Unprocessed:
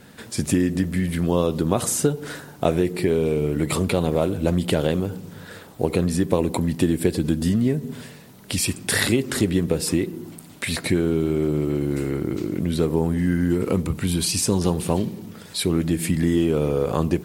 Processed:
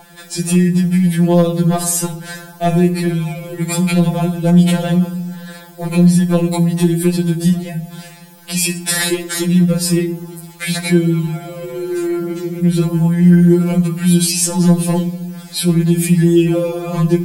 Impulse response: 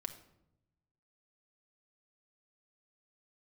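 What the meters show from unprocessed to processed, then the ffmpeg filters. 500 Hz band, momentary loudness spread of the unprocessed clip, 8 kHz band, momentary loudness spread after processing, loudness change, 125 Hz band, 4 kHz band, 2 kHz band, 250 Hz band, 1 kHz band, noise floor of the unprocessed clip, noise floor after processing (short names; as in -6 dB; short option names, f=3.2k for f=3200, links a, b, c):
+2.5 dB, 10 LU, +7.5 dB, 14 LU, +7.5 dB, +10.0 dB, +5.5 dB, +4.5 dB, +8.5 dB, +4.5 dB, -44 dBFS, -38 dBFS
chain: -filter_complex "[0:a]aeval=exprs='val(0)+0.0282*sin(2*PI*780*n/s)':c=same,asoftclip=type=hard:threshold=-10dB,asplit=2[a][b];[1:a]atrim=start_sample=2205,highshelf=f=7.2k:g=7.5[c];[b][c]afir=irnorm=-1:irlink=0,volume=6dB[d];[a][d]amix=inputs=2:normalize=0,afftfilt=real='re*2.83*eq(mod(b,8),0)':imag='im*2.83*eq(mod(b,8),0)':win_size=2048:overlap=0.75,volume=-1dB"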